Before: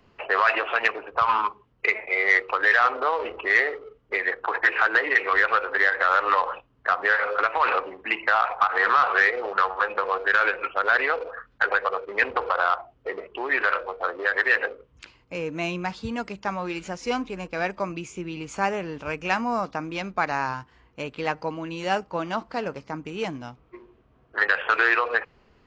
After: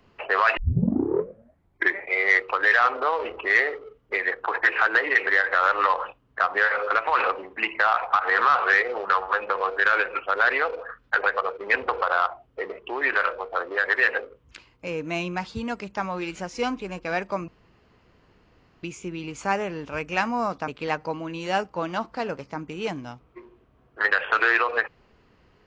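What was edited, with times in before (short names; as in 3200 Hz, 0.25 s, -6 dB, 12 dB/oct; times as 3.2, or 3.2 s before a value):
0.57 tape start 1.54 s
5.27–5.75 cut
17.96 insert room tone 1.35 s
19.81–21.05 cut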